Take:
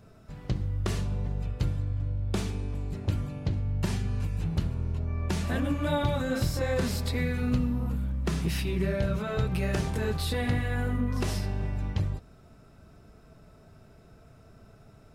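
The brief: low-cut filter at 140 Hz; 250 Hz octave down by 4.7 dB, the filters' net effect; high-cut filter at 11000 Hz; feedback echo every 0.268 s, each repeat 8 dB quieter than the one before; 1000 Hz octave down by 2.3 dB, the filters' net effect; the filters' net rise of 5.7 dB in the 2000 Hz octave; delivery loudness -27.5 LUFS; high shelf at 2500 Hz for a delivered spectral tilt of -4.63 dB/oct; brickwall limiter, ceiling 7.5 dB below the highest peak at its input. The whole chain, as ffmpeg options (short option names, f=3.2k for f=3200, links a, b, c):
-af "highpass=140,lowpass=11k,equalizer=f=250:t=o:g=-5,equalizer=f=1k:t=o:g=-5.5,equalizer=f=2k:t=o:g=7.5,highshelf=f=2.5k:g=3,alimiter=limit=-23.5dB:level=0:latency=1,aecho=1:1:268|536|804|1072|1340:0.398|0.159|0.0637|0.0255|0.0102,volume=6.5dB"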